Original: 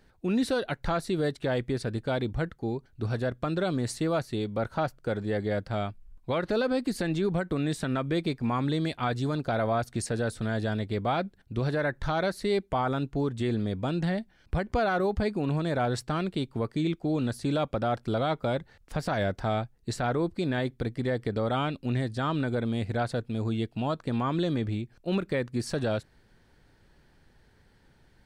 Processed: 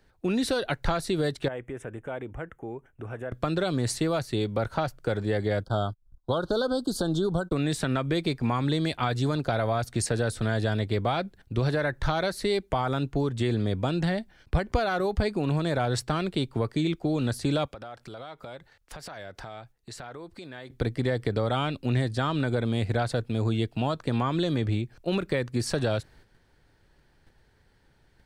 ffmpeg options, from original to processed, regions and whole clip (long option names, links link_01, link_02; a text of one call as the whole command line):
ffmpeg -i in.wav -filter_complex "[0:a]asettb=1/sr,asplit=3[link_01][link_02][link_03];[link_01]atrim=end=1.484[link_04];[link_02]atrim=start=1.48:end=3.32,asetpts=PTS-STARTPTS,afade=type=in:duration=0.004:curve=qsin,afade=type=out:start_time=1.836:duration=0.004:curve=qsin,bass=frequency=250:gain=-7,treble=frequency=4000:gain=-5,acompressor=threshold=-44dB:ratio=2:attack=3.2:release=140:knee=1:detection=peak,asuperstop=centerf=4400:order=4:qfactor=1.2[link_05];[link_03]atrim=start=3.316[link_06];[link_04][link_05]acrossfade=duration=0.004:curve1=hsin:curve2=qsin[link_07];[link_07][link_06]acrossfade=duration=0.004:curve1=qsin:curve2=hsin,asettb=1/sr,asplit=3[link_08][link_09][link_10];[link_08]atrim=end=5.634[link_11];[link_09]atrim=start=5.63:end=7.52,asetpts=PTS-STARTPTS,afade=type=in:duration=0.004:curve=qsin,afade=type=out:start_time=1.886:duration=0.004:curve=qsin,agate=range=-33dB:threshold=-43dB:ratio=16:release=100:detection=peak,acompressor=mode=upward:threshold=-40dB:ratio=2.5:attack=3.2:release=140:knee=2.83:detection=peak,asuperstop=centerf=2200:order=12:qfactor=1.4[link_12];[link_10]atrim=start=7.516[link_13];[link_11][link_12]acrossfade=duration=0.004:curve1=hsin:curve2=qsin[link_14];[link_14][link_13]acrossfade=duration=0.004:curve1=qsin:curve2=hsin,asettb=1/sr,asplit=3[link_15][link_16][link_17];[link_15]atrim=end=17.654[link_18];[link_16]atrim=start=17.65:end=20.7,asetpts=PTS-STARTPTS,afade=type=in:duration=0.004:curve=qsin,afade=type=out:start_time=3.046:duration=0.004:curve=qsin,lowshelf=frequency=470:gain=-9,acompressor=threshold=-42dB:ratio=12:attack=3.2:release=140:knee=1:detection=peak[link_19];[link_17]atrim=start=20.696[link_20];[link_18][link_19]acrossfade=duration=0.004:curve1=hsin:curve2=qsin[link_21];[link_21][link_20]acrossfade=duration=0.004:curve1=qsin:curve2=hsin,agate=range=-7dB:threshold=-57dB:ratio=16:detection=peak,equalizer=frequency=210:width_type=o:width=0.77:gain=-4,acrossover=split=130|3000[link_22][link_23][link_24];[link_23]acompressor=threshold=-29dB:ratio=6[link_25];[link_22][link_25][link_24]amix=inputs=3:normalize=0,volume=5.5dB" out.wav